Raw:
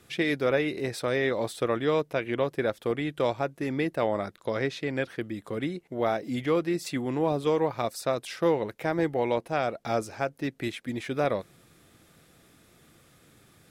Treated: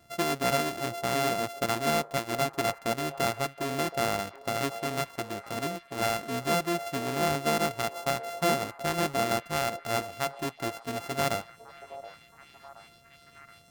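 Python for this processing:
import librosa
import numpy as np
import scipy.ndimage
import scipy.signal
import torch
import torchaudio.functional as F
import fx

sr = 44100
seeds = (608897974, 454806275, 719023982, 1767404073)

y = np.r_[np.sort(x[:len(x) // 64 * 64].reshape(-1, 64), axis=1).ravel(), x[len(x) // 64 * 64:]]
y = fx.echo_stepped(y, sr, ms=724, hz=610.0, octaves=0.7, feedback_pct=70, wet_db=-12.0)
y = y * librosa.db_to_amplitude(-2.0)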